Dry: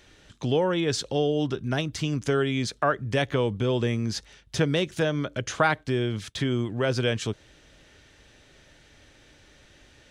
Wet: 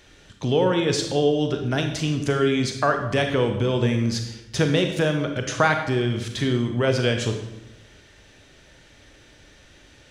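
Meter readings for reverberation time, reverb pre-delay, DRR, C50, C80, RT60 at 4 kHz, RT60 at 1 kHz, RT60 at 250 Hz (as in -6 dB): 0.90 s, 30 ms, 5.0 dB, 6.5 dB, 9.0 dB, 0.70 s, 0.80 s, 1.1 s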